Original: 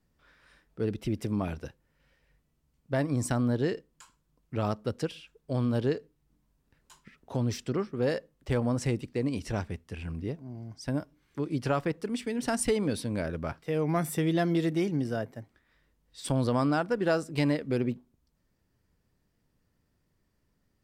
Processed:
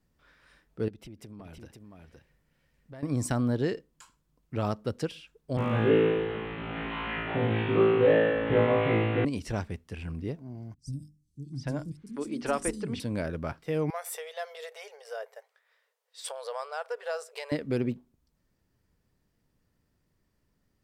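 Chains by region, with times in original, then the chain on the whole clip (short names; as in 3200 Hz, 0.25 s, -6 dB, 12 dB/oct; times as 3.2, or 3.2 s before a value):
0.88–3.03 compressor 3:1, threshold -48 dBFS + echo 0.515 s -4.5 dB
5.57–9.25 delta modulation 16 kbps, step -34 dBFS + HPF 100 Hz + flutter echo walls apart 3.1 m, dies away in 1.4 s
10.74–13 LPF 10000 Hz + notches 50/100/150/200/250/300/350/400 Hz + three bands offset in time lows, highs, mids 50/790 ms, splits 210/5900 Hz
13.9–17.52 compressor 3:1, threshold -29 dBFS + brick-wall FIR high-pass 420 Hz
whole clip: dry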